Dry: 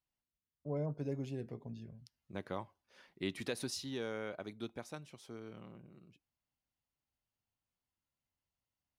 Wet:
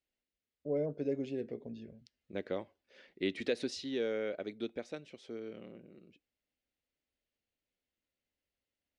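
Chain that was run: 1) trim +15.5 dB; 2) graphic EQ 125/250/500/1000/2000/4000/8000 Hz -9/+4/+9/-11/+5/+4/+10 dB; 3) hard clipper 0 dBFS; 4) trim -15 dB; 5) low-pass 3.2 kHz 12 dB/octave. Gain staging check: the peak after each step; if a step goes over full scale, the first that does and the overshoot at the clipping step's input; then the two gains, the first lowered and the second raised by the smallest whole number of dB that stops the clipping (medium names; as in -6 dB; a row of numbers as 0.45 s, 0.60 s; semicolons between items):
-9.0 dBFS, -5.0 dBFS, -5.0 dBFS, -20.0 dBFS, -20.5 dBFS; nothing clips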